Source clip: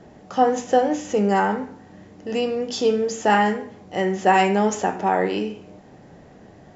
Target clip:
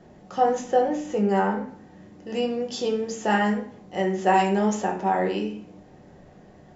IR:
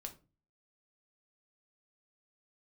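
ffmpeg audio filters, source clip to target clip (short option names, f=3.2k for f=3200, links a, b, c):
-filter_complex "[0:a]asettb=1/sr,asplit=3[a][b][c];[a]atrim=end=0.684[d];[b]atrim=start=0.68:end=1.68,asetpts=PTS-STARTPTS,afade=t=in:d=0.004:c=qsin,afade=t=out:st=0.996:d=0.004:c=qsin,highshelf=f=4k:g=-6.5[e];[c]atrim=start=1.676[f];[d][e]acrossfade=d=0.004:c1=hsin:c2=qsin[g];[g][f]acrossfade=d=0.004:c1=qsin:c2=hsin[h];[1:a]atrim=start_sample=2205[i];[h][i]afir=irnorm=-1:irlink=0"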